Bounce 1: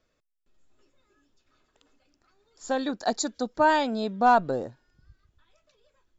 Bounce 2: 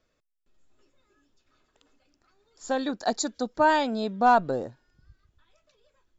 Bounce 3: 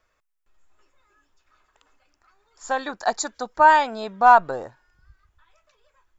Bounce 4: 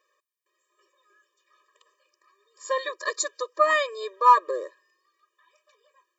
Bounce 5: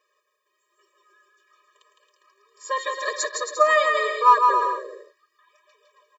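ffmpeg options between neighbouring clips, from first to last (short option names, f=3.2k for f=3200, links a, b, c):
-af anull
-af "equalizer=f=125:t=o:w=1:g=-7,equalizer=f=250:t=o:w=1:g=-10,equalizer=f=500:t=o:w=1:g=-4,equalizer=f=1k:t=o:w=1:g=6,equalizer=f=2k:t=o:w=1:g=3,equalizer=f=4k:t=o:w=1:g=-5,volume=4dB"
-af "lowshelf=f=440:g=-4.5,afftfilt=real='re*eq(mod(floor(b*sr/1024/320),2),1)':imag='im*eq(mod(floor(b*sr/1024/320),2),1)':win_size=1024:overlap=0.75,volume=3.5dB"
-filter_complex "[0:a]aecho=1:1:4.8:0.48,asplit=2[a][b];[b]aecho=0:1:160|272|350.4|405.3|443.7:0.631|0.398|0.251|0.158|0.1[c];[a][c]amix=inputs=2:normalize=0"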